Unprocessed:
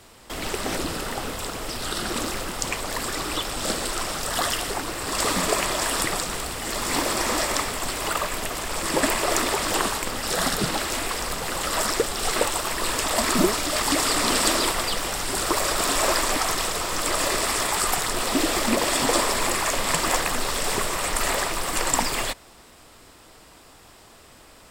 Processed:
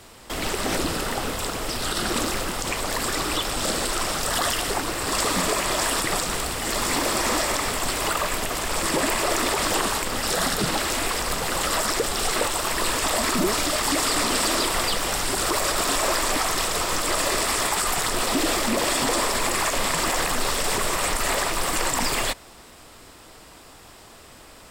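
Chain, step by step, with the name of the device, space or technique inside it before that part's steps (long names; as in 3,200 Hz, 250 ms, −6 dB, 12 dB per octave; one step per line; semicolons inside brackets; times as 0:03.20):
soft clipper into limiter (soft clipping −8 dBFS, distortion −28 dB; brickwall limiter −16.5 dBFS, peak gain reduction 7 dB)
level +3 dB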